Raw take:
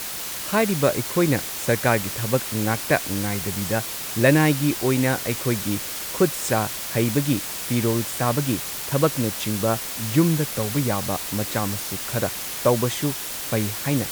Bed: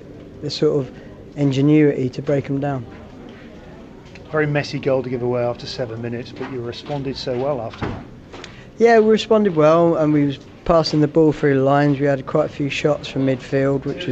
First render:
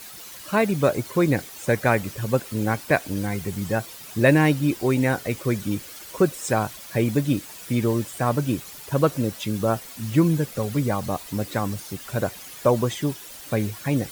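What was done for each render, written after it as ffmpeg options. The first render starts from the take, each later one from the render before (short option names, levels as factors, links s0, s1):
-af "afftdn=nr=12:nf=-31"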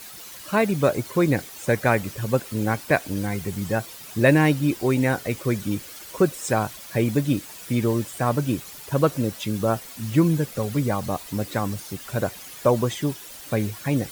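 -af anull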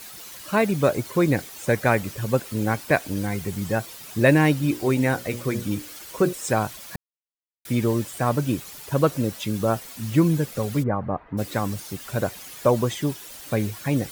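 -filter_complex "[0:a]asettb=1/sr,asplit=3[s0][s1][s2];[s0]atrim=end=4.624[s3];[s1]atrim=start=4.62:end=6.33,asetpts=PTS-STARTPTS,afade=t=in:d=0.004:c=qsin,afade=t=out:st=1.706:d=0.004:c=qsin,bandreject=f=60:t=h:w=6,bandreject=f=120:t=h:w=6,bandreject=f=180:t=h:w=6,bandreject=f=240:t=h:w=6,bandreject=f=300:t=h:w=6,bandreject=f=360:t=h:w=6,bandreject=f=420:t=h:w=6,bandreject=f=480:t=h:w=6,bandreject=f=540:t=h:w=6,bandreject=f=600:t=h:w=6[s4];[s2]atrim=start=6.326[s5];[s3][s4]acrossfade=d=0.004:c1=hsin:c2=qsin[s6];[s6][s5]acrossfade=d=0.004:c1=qsin:c2=hsin,asplit=3[s7][s8][s9];[s7]afade=t=out:st=10.82:d=0.02[s10];[s8]lowpass=f=1700:w=0.5412,lowpass=f=1700:w=1.3066,afade=t=in:st=10.82:d=0.02,afade=t=out:st=11.37:d=0.02[s11];[s9]afade=t=in:st=11.37:d=0.02[s12];[s10][s11][s12]amix=inputs=3:normalize=0,asplit=3[s13][s14][s15];[s13]atrim=end=6.96,asetpts=PTS-STARTPTS,afade=t=out:st=6.956:d=0.004:c=hsin[s16];[s14]atrim=start=6.96:end=7.65,asetpts=PTS-STARTPTS,volume=0[s17];[s15]atrim=start=7.65,asetpts=PTS-STARTPTS,afade=t=in:d=0.004:c=hsin[s18];[s16][s17][s18]concat=n=3:v=0:a=1"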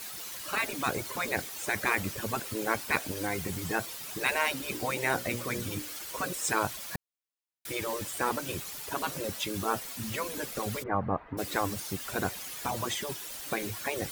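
-af "afftfilt=real='re*lt(hypot(re,im),0.316)':imag='im*lt(hypot(re,im),0.316)':win_size=1024:overlap=0.75,lowshelf=f=390:g=-3.5"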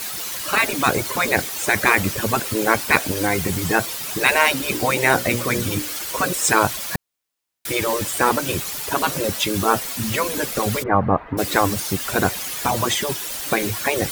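-af "volume=3.98,alimiter=limit=0.891:level=0:latency=1"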